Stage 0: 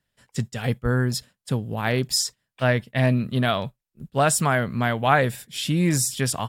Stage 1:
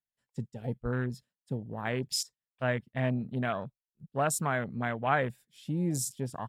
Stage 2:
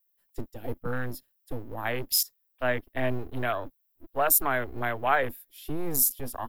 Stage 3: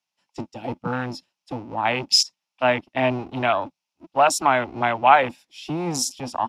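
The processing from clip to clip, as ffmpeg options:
ffmpeg -i in.wav -af "afwtdn=0.0355,equalizer=frequency=84:width_type=o:width=1:gain=-5,volume=-8.5dB" out.wav
ffmpeg -i in.wav -filter_complex "[0:a]acrossover=split=330|1400[link_01][link_02][link_03];[link_01]aeval=exprs='abs(val(0))':channel_layout=same[link_04];[link_04][link_02][link_03]amix=inputs=3:normalize=0,aexciter=amount=12.1:drive=3.7:freq=11000,volume=4dB" out.wav
ffmpeg -i in.wav -af "highpass=150,equalizer=frequency=180:width_type=q:width=4:gain=5,equalizer=frequency=440:width_type=q:width=4:gain=-9,equalizer=frequency=870:width_type=q:width=4:gain=8,equalizer=frequency=1700:width_type=q:width=4:gain=-7,equalizer=frequency=2600:width_type=q:width=4:gain=7,equalizer=frequency=5400:width_type=q:width=4:gain=6,lowpass=frequency=6900:width=0.5412,lowpass=frequency=6900:width=1.3066,volume=8dB" out.wav

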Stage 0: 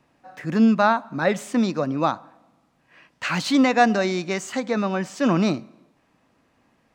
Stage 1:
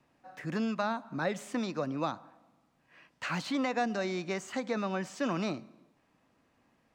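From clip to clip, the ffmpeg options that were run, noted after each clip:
ffmpeg -i in.wav -filter_complex "[0:a]acrossover=split=490|1600|3200[link_01][link_02][link_03][link_04];[link_01]acompressor=threshold=-27dB:ratio=4[link_05];[link_02]acompressor=threshold=-27dB:ratio=4[link_06];[link_03]acompressor=threshold=-37dB:ratio=4[link_07];[link_04]acompressor=threshold=-40dB:ratio=4[link_08];[link_05][link_06][link_07][link_08]amix=inputs=4:normalize=0,volume=-6.5dB" out.wav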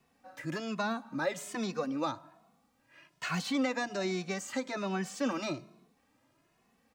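ffmpeg -i in.wav -filter_complex "[0:a]highshelf=frequency=5800:gain=9,asplit=2[link_01][link_02];[link_02]adelay=2.3,afreqshift=1.2[link_03];[link_01][link_03]amix=inputs=2:normalize=1,volume=2dB" out.wav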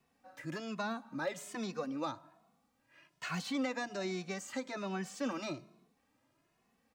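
ffmpeg -i in.wav -af "volume=22.5dB,asoftclip=hard,volume=-22.5dB,volume=-4.5dB" out.wav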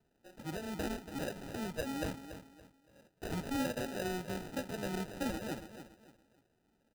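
ffmpeg -i in.wav -af "acrusher=samples=40:mix=1:aa=0.000001,aecho=1:1:283|566|849:0.282|0.0846|0.0254" out.wav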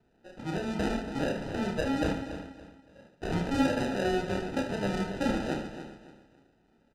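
ffmpeg -i in.wav -af "aecho=1:1:30|75|142.5|243.8|395.6:0.631|0.398|0.251|0.158|0.1,adynamicsmooth=sensitivity=2:basefreq=5000,volume=6.5dB" out.wav

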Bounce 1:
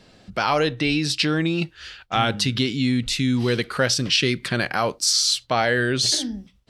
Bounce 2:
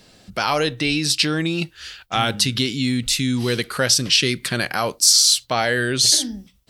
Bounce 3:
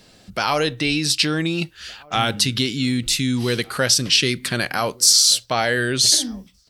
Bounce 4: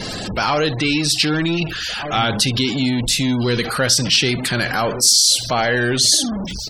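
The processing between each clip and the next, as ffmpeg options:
ffmpeg -i in.wav -af "aemphasis=mode=production:type=50fm" out.wav
ffmpeg -i in.wav -filter_complex "[0:a]asplit=2[link_01][link_02];[link_02]adelay=1516,volume=-25dB,highshelf=frequency=4000:gain=-34.1[link_03];[link_01][link_03]amix=inputs=2:normalize=0" out.wav
ffmpeg -i in.wav -af "aeval=exprs='val(0)+0.5*0.112*sgn(val(0))':channel_layout=same,aecho=1:1:66|132|198:0.141|0.0537|0.0204,afftfilt=real='re*gte(hypot(re,im),0.0501)':imag='im*gte(hypot(re,im),0.0501)':win_size=1024:overlap=0.75,volume=-1dB" out.wav

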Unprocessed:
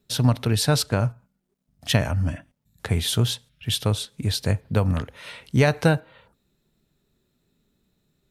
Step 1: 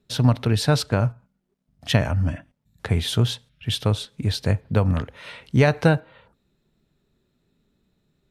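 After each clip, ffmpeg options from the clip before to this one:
ffmpeg -i in.wav -af "highshelf=frequency=6500:gain=-11.5,volume=1.5dB" out.wav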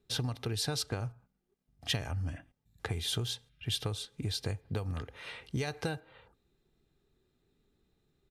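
ffmpeg -i in.wav -filter_complex "[0:a]aecho=1:1:2.5:0.42,acrossover=split=3800[link_01][link_02];[link_01]acompressor=threshold=-26dB:ratio=10[link_03];[link_03][link_02]amix=inputs=2:normalize=0,volume=-5.5dB" out.wav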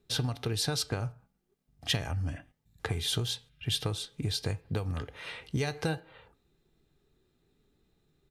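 ffmpeg -i in.wav -af "flanger=delay=5.8:depth=1.4:regen=87:speed=1.5:shape=triangular,volume=7.5dB" out.wav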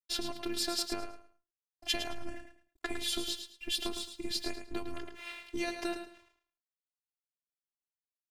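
ffmpeg -i in.wav -af "aeval=exprs='sgn(val(0))*max(abs(val(0))-0.00158,0)':channel_layout=same,aecho=1:1:108|216|324:0.376|0.0902|0.0216,afftfilt=real='hypot(re,im)*cos(PI*b)':imag='0':win_size=512:overlap=0.75,volume=2dB" out.wav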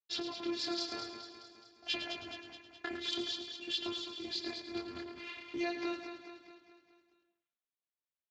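ffmpeg -i in.wav -af "flanger=delay=19.5:depth=7.3:speed=0.51,aecho=1:1:211|422|633|844|1055|1266:0.398|0.215|0.116|0.0627|0.0339|0.0183,volume=1dB" -ar 16000 -c:a libspeex -b:a 21k out.spx

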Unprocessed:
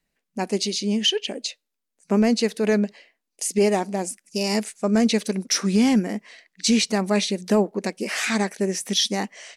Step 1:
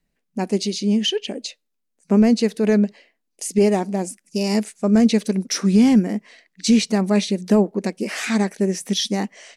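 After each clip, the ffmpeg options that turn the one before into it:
ffmpeg -i in.wav -af "lowshelf=frequency=390:gain=9,volume=-2dB" out.wav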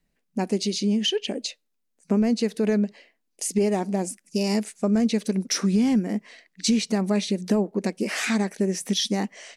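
ffmpeg -i in.wav -af "acompressor=threshold=-21dB:ratio=2.5" out.wav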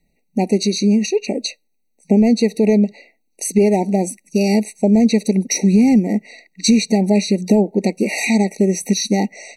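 ffmpeg -i in.wav -af "afftfilt=real='re*eq(mod(floor(b*sr/1024/940),2),0)':imag='im*eq(mod(floor(b*sr/1024/940),2),0)':win_size=1024:overlap=0.75,volume=8.5dB" out.wav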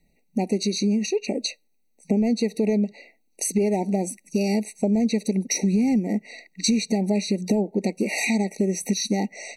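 ffmpeg -i in.wav -af "acompressor=threshold=-25dB:ratio=2" out.wav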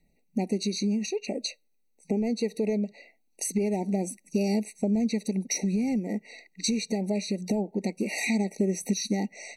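ffmpeg -i in.wav -af "aphaser=in_gain=1:out_gain=1:delay=2.5:decay=0.22:speed=0.23:type=triangular,volume=-5dB" out.wav

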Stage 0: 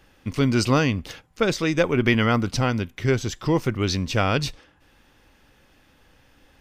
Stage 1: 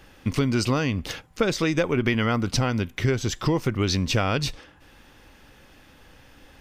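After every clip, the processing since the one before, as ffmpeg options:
ffmpeg -i in.wav -af "acompressor=threshold=-25dB:ratio=5,volume=5.5dB" out.wav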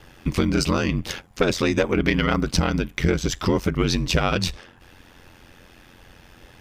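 ffmpeg -i in.wav -af "aeval=exprs='0.376*(cos(1*acos(clip(val(0)/0.376,-1,1)))-cos(1*PI/2))+0.0944*(cos(2*acos(clip(val(0)/0.376,-1,1)))-cos(2*PI/2))':channel_layout=same,aeval=exprs='val(0)*sin(2*PI*44*n/s)':channel_layout=same,volume=5.5dB" out.wav

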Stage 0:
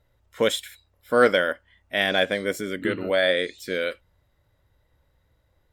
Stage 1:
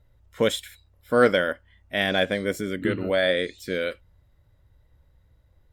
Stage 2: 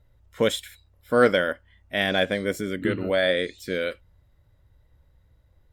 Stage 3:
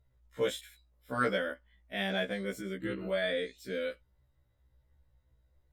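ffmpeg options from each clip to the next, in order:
ffmpeg -i in.wav -af "lowshelf=frequency=200:gain=10.5,volume=-2dB" out.wav
ffmpeg -i in.wav -af anull out.wav
ffmpeg -i in.wav -af "afftfilt=real='re*1.73*eq(mod(b,3),0)':imag='im*1.73*eq(mod(b,3),0)':win_size=2048:overlap=0.75,volume=-7.5dB" out.wav

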